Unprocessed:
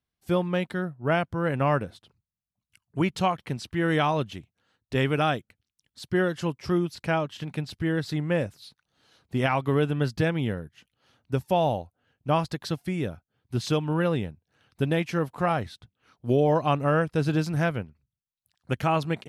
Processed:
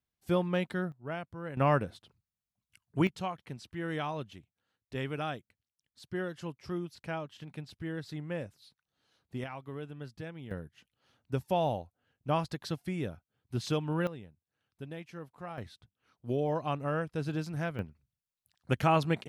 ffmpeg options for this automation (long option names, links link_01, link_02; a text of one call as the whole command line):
ffmpeg -i in.wav -af "asetnsamples=nb_out_samples=441:pad=0,asendcmd='0.92 volume volume -14dB;1.57 volume volume -2.5dB;3.07 volume volume -11.5dB;9.44 volume volume -18dB;10.51 volume volume -6dB;14.07 volume volume -18dB;15.58 volume volume -9.5dB;17.79 volume volume -1.5dB',volume=-4dB" out.wav